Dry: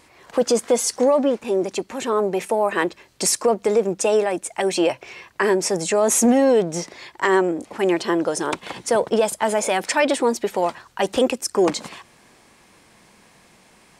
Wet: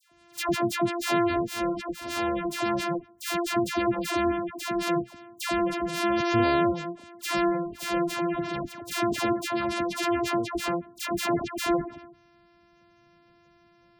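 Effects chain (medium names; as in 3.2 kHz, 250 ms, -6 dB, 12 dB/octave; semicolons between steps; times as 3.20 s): sorted samples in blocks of 128 samples; phase dispersion lows, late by 120 ms, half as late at 1.3 kHz; spectral gate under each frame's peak -20 dB strong; trim -6.5 dB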